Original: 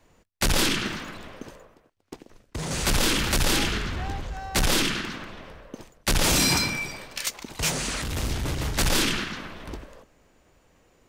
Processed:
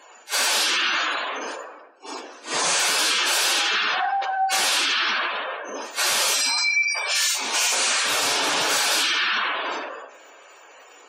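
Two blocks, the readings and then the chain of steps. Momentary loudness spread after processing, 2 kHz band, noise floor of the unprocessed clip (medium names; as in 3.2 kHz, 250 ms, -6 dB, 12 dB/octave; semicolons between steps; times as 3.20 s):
13 LU, +7.5 dB, -63 dBFS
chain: phase randomisation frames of 200 ms; high-pass 730 Hz 12 dB/octave; band-stop 2 kHz, Q 13; in parallel at +1.5 dB: peak limiter -21.5 dBFS, peak gain reduction 10.5 dB; on the sum: compression 6:1, threshold -28 dBFS, peak gain reduction 11 dB; Chebyshev shaper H 5 -7 dB, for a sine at -16.5 dBFS; spectral gate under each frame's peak -15 dB strong; simulated room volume 390 m³, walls mixed, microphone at 0.35 m; trim +2 dB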